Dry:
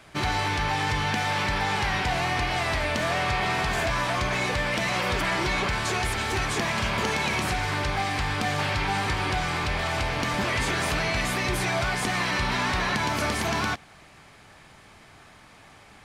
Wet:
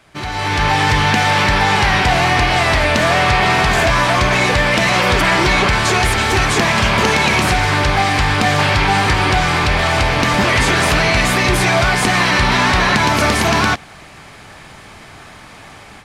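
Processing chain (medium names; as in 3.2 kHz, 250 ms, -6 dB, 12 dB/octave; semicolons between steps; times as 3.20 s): level rider gain up to 13 dB; loudspeaker Doppler distortion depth 0.11 ms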